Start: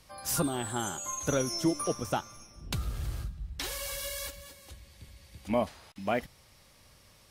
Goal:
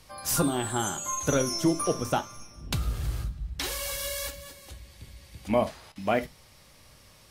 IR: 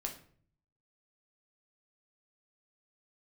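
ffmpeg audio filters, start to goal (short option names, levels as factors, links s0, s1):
-filter_complex "[0:a]asplit=2[s0][s1];[1:a]atrim=start_sample=2205,atrim=end_sample=3528[s2];[s1][s2]afir=irnorm=-1:irlink=0,volume=0.708[s3];[s0][s3]amix=inputs=2:normalize=0"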